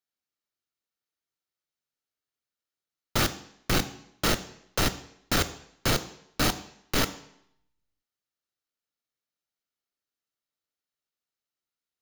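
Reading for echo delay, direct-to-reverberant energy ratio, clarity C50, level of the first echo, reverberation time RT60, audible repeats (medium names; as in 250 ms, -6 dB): no echo, 11.0 dB, 15.0 dB, no echo, 0.70 s, no echo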